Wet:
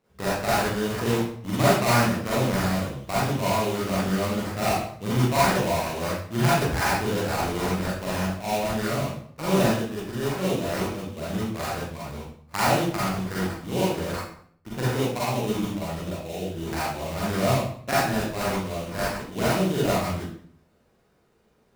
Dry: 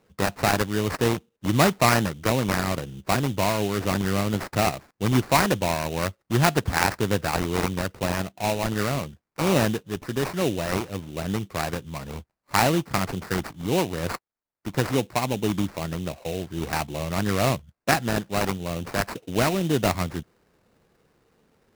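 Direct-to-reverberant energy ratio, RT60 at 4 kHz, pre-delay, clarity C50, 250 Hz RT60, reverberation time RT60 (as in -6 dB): -8.5 dB, 0.50 s, 37 ms, -3.0 dB, 0.70 s, 0.55 s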